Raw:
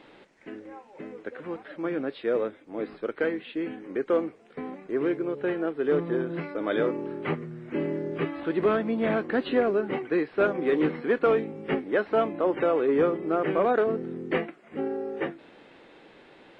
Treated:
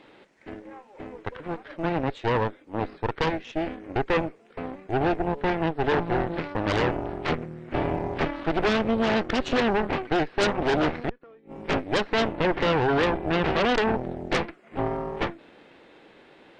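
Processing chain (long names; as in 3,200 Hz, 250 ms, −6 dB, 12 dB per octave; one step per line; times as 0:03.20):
0:11.03–0:11.67: gate with flip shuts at −19 dBFS, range −29 dB
harmonic generator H 5 −22 dB, 8 −8 dB, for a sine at −11.5 dBFS
level −3 dB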